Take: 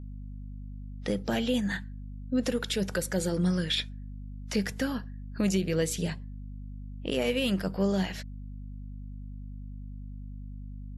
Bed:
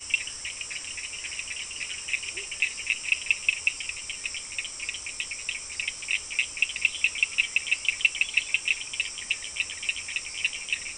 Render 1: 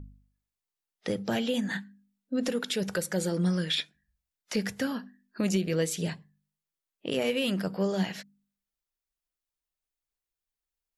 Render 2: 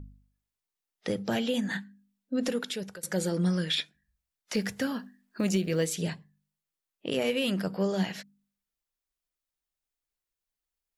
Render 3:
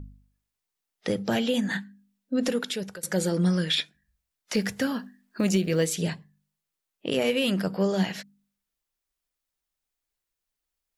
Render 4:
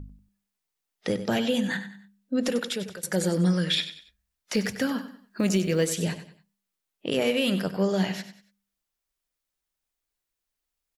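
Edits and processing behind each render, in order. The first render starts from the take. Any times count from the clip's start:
hum removal 50 Hz, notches 5
0:02.54–0:03.03: fade out, to −21.5 dB; 0:04.54–0:05.93: log-companded quantiser 8 bits
level +3.5 dB
repeating echo 95 ms, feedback 34%, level −12 dB

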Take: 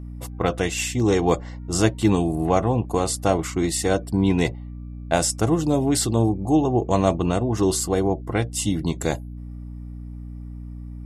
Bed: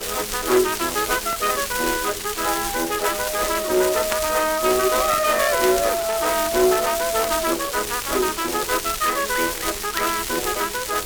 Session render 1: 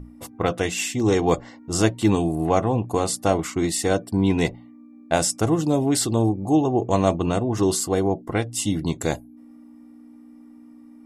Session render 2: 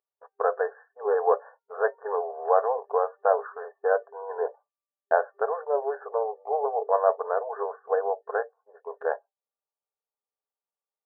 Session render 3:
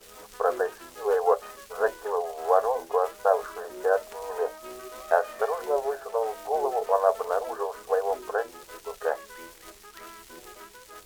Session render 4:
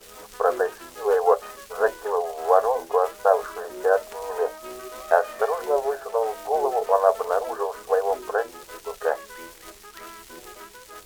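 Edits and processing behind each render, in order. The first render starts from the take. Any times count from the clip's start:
mains-hum notches 60/120/180 Hz
brick-wall band-pass 400–1,800 Hz; downward expander −37 dBFS
mix in bed −22.5 dB
level +3.5 dB

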